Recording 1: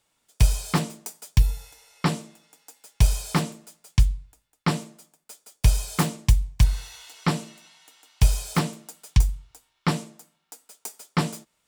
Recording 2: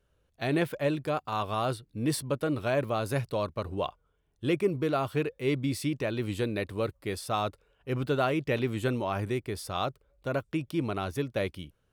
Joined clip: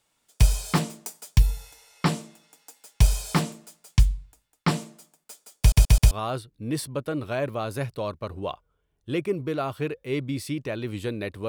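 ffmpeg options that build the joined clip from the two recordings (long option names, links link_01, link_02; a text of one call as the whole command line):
ffmpeg -i cue0.wav -i cue1.wav -filter_complex "[0:a]apad=whole_dur=11.48,atrim=end=11.48,asplit=4[link_01][link_02][link_03][link_04];[link_01]atrim=end=5.722[link_05];[link_02]atrim=start=5.588:end=5.722[link_06];[link_03]atrim=start=5.588:end=5.722[link_07];[link_04]atrim=start=5.588:end=5.722[link_08];[1:a]atrim=start=1.458:end=6.83[link_09];[link_05][link_06]acrossfade=duration=0.004:curve1=hsin:curve2=hsin[link_10];[link_10][link_07]acrossfade=duration=0.004:curve1=hsin:curve2=hsin[link_11];[link_11][link_08]acrossfade=duration=0.004:curve1=hsin:curve2=hsin[link_12];[link_12][link_09]acrossfade=duration=0.004:curve1=hsin:curve2=hsin" out.wav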